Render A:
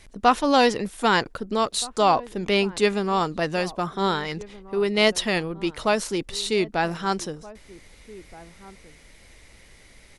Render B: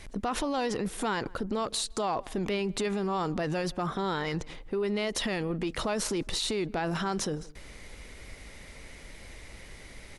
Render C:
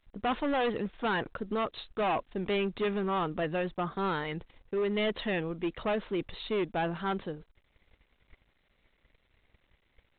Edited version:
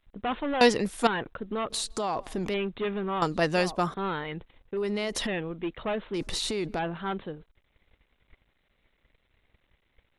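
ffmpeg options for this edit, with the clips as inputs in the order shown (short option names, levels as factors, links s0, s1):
-filter_complex "[0:a]asplit=2[s0][s1];[1:a]asplit=3[s2][s3][s4];[2:a]asplit=6[s5][s6][s7][s8][s9][s10];[s5]atrim=end=0.612[s11];[s0]atrim=start=0.608:end=1.072[s12];[s6]atrim=start=1.068:end=1.702[s13];[s2]atrim=start=1.698:end=2.542[s14];[s7]atrim=start=2.538:end=3.222[s15];[s1]atrim=start=3.218:end=3.942[s16];[s8]atrim=start=3.938:end=4.772[s17];[s3]atrim=start=4.768:end=5.272[s18];[s9]atrim=start=5.268:end=6.142[s19];[s4]atrim=start=6.138:end=6.792[s20];[s10]atrim=start=6.788[s21];[s11][s12]acrossfade=d=0.004:c1=hsin:c2=hsin[s22];[s22][s13]acrossfade=d=0.004:c1=hsin:c2=hsin[s23];[s23][s14]acrossfade=d=0.004:c1=hsin:c2=hsin[s24];[s24][s15]acrossfade=d=0.004:c1=hsin:c2=hsin[s25];[s25][s16]acrossfade=d=0.004:c1=hsin:c2=hsin[s26];[s26][s17]acrossfade=d=0.004:c1=hsin:c2=hsin[s27];[s27][s18]acrossfade=d=0.004:c1=hsin:c2=hsin[s28];[s28][s19]acrossfade=d=0.004:c1=hsin:c2=hsin[s29];[s29][s20]acrossfade=d=0.004:c1=hsin:c2=hsin[s30];[s30][s21]acrossfade=d=0.004:c1=hsin:c2=hsin"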